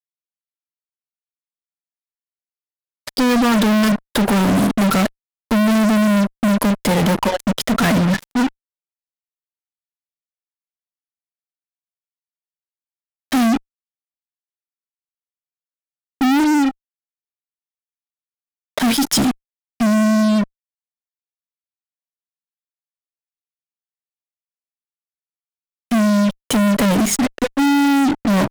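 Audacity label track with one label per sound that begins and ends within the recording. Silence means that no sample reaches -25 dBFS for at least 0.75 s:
3.070000	8.490000	sound
13.320000	13.570000	sound
16.210000	16.710000	sound
18.780000	20.440000	sound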